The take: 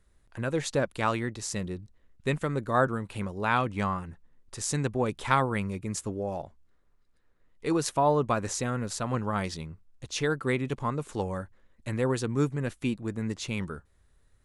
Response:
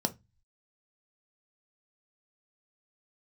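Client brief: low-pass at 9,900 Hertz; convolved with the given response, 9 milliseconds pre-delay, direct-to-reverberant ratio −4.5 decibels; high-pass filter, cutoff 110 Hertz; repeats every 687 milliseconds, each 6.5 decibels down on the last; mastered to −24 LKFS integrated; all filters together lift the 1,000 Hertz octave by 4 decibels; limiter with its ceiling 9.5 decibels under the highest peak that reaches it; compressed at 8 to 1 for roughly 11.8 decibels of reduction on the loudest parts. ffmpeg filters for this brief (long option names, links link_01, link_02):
-filter_complex "[0:a]highpass=110,lowpass=9900,equalizer=frequency=1000:width_type=o:gain=5,acompressor=threshold=-28dB:ratio=8,alimiter=limit=-23dB:level=0:latency=1,aecho=1:1:687|1374|2061|2748|3435|4122:0.473|0.222|0.105|0.0491|0.0231|0.0109,asplit=2[link_01][link_02];[1:a]atrim=start_sample=2205,adelay=9[link_03];[link_02][link_03]afir=irnorm=-1:irlink=0,volume=-1dB[link_04];[link_01][link_04]amix=inputs=2:normalize=0,volume=1dB"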